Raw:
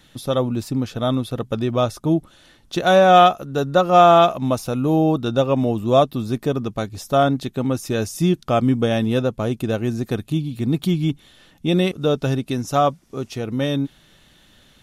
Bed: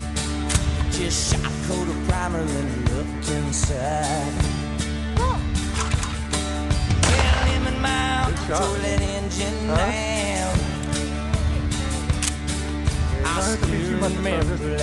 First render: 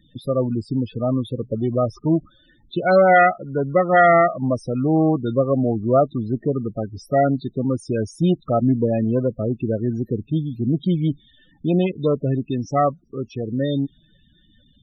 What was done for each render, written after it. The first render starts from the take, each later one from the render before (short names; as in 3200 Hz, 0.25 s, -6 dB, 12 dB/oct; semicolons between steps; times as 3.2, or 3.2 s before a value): self-modulated delay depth 0.26 ms; loudest bins only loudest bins 16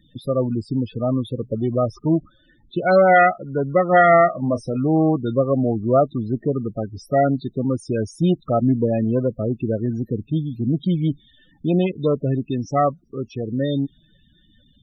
2.15–2.79 LPF 3000 Hz; 3.88–4.77 doubler 28 ms -12 dB; 9.85–11.03 dynamic EQ 380 Hz, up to -6 dB, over -39 dBFS, Q 7.4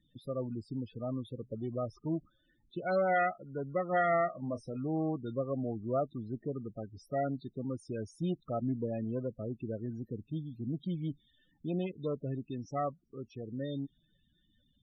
gain -15.5 dB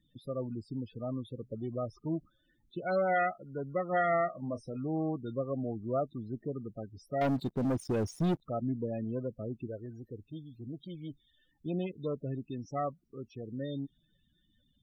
7.21–8.41 sample leveller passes 3; 9.67–11.66 bell 190 Hz -10 dB 1.2 oct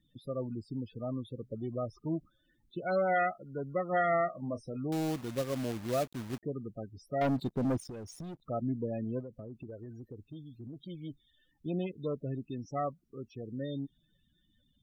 4.92–6.43 companded quantiser 4-bit; 7.81–8.48 compressor 16:1, threshold -40 dBFS; 9.2–10.76 compressor, threshold -40 dBFS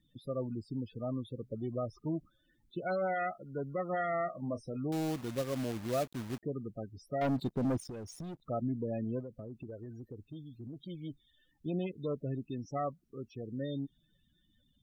limiter -26 dBFS, peak gain reduction 7 dB